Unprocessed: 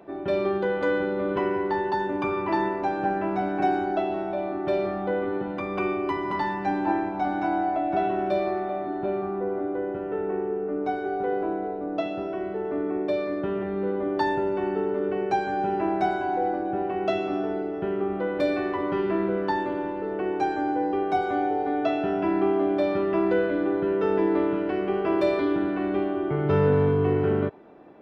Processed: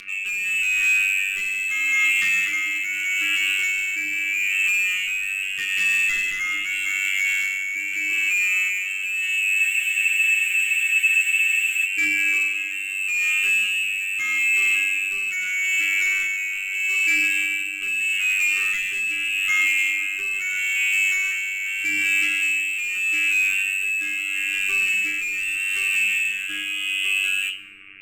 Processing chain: low shelf 290 Hz -4 dB; notches 50/100/150/200/250/300/350/400 Hz; in parallel at +2 dB: negative-ratio compressor -30 dBFS, ratio -1; on the sum: requantised 8-bit, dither none; robotiser 96.3 Hz; inverted band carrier 3000 Hz; overloaded stage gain 24 dB; brick-wall FIR band-stop 470–1100 Hz; on a send at -7 dB: reverb RT60 1.4 s, pre-delay 6 ms; on the sum: rotary speaker horn 0.8 Hz; spectral freeze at 9.62, 2.23 s; gain +5.5 dB

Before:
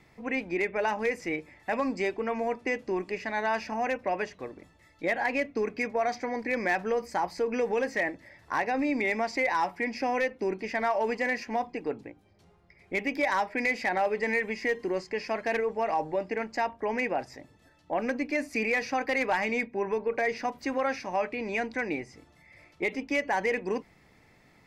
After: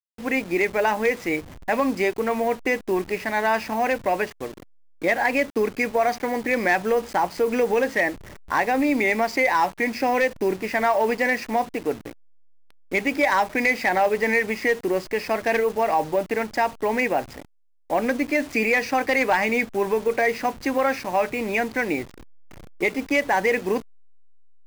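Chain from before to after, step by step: level-crossing sampler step -42.5 dBFS; gain +7 dB

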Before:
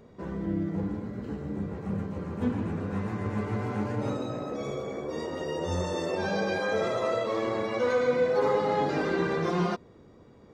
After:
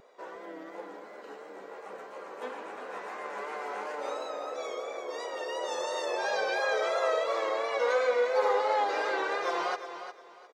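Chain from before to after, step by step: HPF 510 Hz 24 dB/oct; vibrato 2.9 Hz 51 cents; feedback echo 0.356 s, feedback 26%, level -10.5 dB; gain +1.5 dB

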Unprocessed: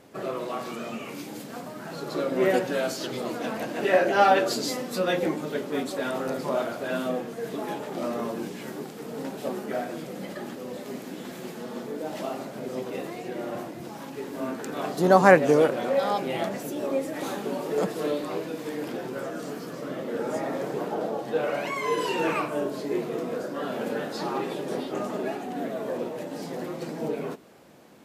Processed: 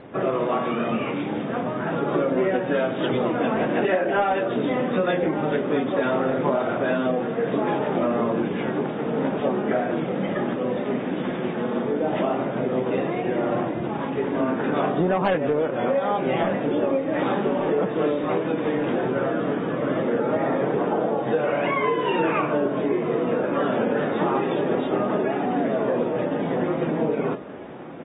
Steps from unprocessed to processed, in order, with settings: in parallel at -6.5 dB: soft clip -16 dBFS, distortion -11 dB; on the sum: air absorption 300 m; hard clip -10.5 dBFS, distortion -18 dB; on a send: feedback echo 1.176 s, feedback 53%, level -19 dB; on the sum: compressor 10:1, threshold -27 dBFS, peak gain reduction 14.5 dB; gain +8 dB; AAC 16 kbps 32000 Hz

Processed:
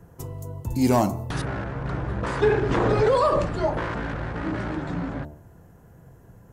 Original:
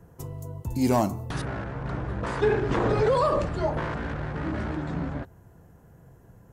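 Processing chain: de-hum 74.46 Hz, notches 15; gain +3 dB

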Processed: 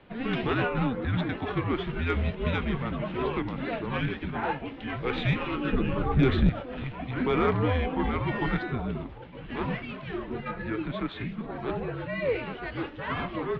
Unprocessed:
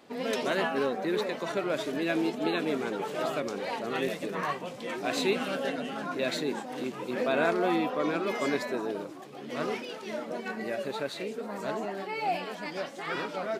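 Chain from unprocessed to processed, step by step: 5.72–6.49 bell 310 Hz +14.5 dB 1.7 oct; mistuned SSB -250 Hz 290–3600 Hz; added harmonics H 5 -17 dB, 6 -28 dB, 7 -25 dB, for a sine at -10.5 dBFS

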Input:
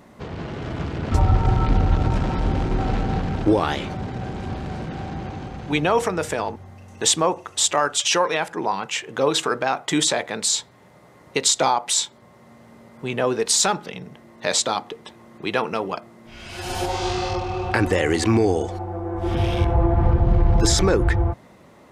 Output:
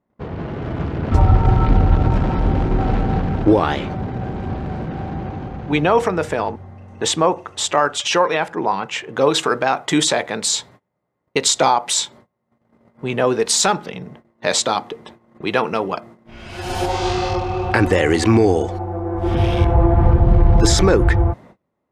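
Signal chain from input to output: gate -44 dBFS, range -29 dB; high shelf 4600 Hz -12 dB, from 9.16 s -4.5 dB; mismatched tape noise reduction decoder only; gain +4.5 dB

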